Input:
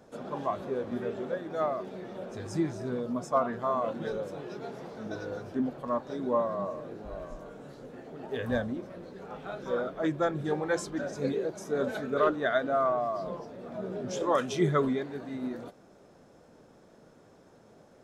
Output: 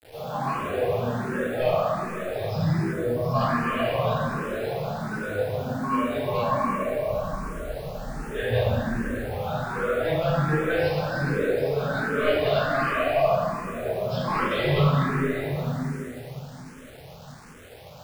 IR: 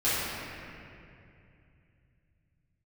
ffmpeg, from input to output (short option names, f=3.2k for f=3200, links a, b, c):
-filter_complex "[0:a]equalizer=f=310:w=1.6:g=-13.5,acrossover=split=110[a][b];[b]asoftclip=type=tanh:threshold=-31.5dB[c];[a][c]amix=inputs=2:normalize=0[d];[1:a]atrim=start_sample=2205[e];[d][e]afir=irnorm=-1:irlink=0,aresample=11025,aresample=44100,asettb=1/sr,asplit=3[f][g][h];[f]atrim=end=2.934[i];[g]atrim=start=2.93:end=3.41,asetpts=PTS-STARTPTS,afade=t=in:d=0.004:c=qsin,afade=t=out:st=0.476:d=0.004:c=qsin,equalizer=f=2.7k:w=1.3:g=-9.5[j];[h]atrim=start=3.406[k];[i][j]acrossfade=d=0.004:c1=hsin:c2=qsin[l];[l][k]acrossfade=d=0.004:c1=qsin:c2=hsin,acrusher=bits=7:mix=0:aa=0.000001,asplit=2[m][n];[n]afreqshift=1.3[o];[m][o]amix=inputs=2:normalize=1,volume=3dB"